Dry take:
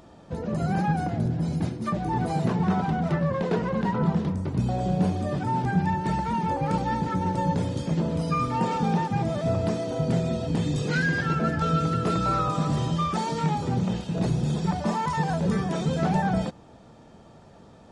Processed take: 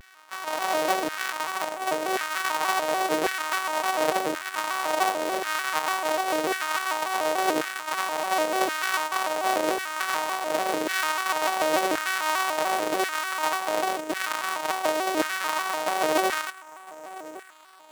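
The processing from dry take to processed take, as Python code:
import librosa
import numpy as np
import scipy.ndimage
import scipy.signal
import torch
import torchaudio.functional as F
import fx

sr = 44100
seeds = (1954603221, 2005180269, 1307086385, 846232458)

y = np.r_[np.sort(x[:len(x) // 128 * 128].reshape(-1, 128), axis=1).ravel(), x[len(x) // 128 * 128:]]
y = fx.low_shelf(y, sr, hz=100.0, db=-6.0)
y = fx.echo_feedback(y, sr, ms=1016, feedback_pct=33, wet_db=-19)
y = fx.filter_lfo_highpass(y, sr, shape='saw_down', hz=0.92, low_hz=450.0, high_hz=1600.0, q=2.1)
y = fx.vibrato_shape(y, sr, shape='square', rate_hz=3.4, depth_cents=160.0)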